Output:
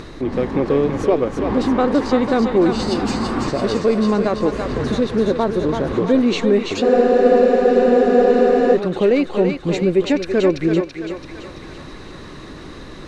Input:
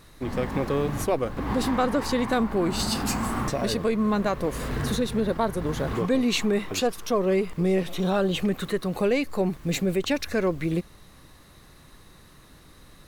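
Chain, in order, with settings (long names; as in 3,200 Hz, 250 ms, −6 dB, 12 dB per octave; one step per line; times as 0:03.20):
Bessel low-pass filter 5,000 Hz, order 4
parametric band 350 Hz +9 dB 1.3 octaves
upward compression, threshold −26 dBFS
feedback echo with a high-pass in the loop 334 ms, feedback 61%, high-pass 560 Hz, level −4 dB
frozen spectrum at 0:06.84, 1.91 s
level +2 dB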